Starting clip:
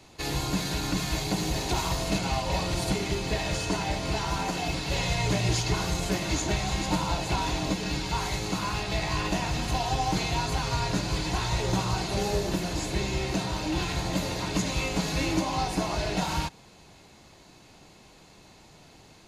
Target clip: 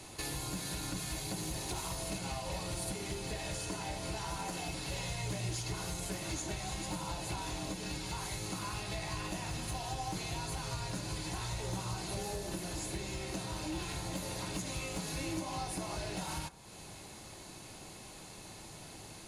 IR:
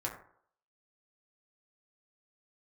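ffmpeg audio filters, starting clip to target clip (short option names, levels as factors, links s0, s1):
-filter_complex "[0:a]equalizer=f=10000:w=1.6:g=14.5,acompressor=threshold=0.00708:ratio=3,volume=39.8,asoftclip=hard,volume=0.0251,asplit=2[s0][s1];[1:a]atrim=start_sample=2205[s2];[s1][s2]afir=irnorm=-1:irlink=0,volume=0.316[s3];[s0][s3]amix=inputs=2:normalize=0"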